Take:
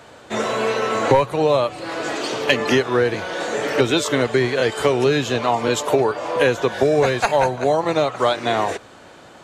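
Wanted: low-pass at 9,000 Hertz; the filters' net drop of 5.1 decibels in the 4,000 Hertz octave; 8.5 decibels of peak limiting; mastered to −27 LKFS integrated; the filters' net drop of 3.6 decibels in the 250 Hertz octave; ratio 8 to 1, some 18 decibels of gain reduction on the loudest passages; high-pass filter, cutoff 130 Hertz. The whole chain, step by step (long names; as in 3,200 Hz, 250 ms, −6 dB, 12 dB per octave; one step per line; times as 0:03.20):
high-pass filter 130 Hz
low-pass filter 9,000 Hz
parametric band 250 Hz −4.5 dB
parametric band 4,000 Hz −6.5 dB
downward compressor 8 to 1, threshold −32 dBFS
level +10.5 dB
brickwall limiter −17.5 dBFS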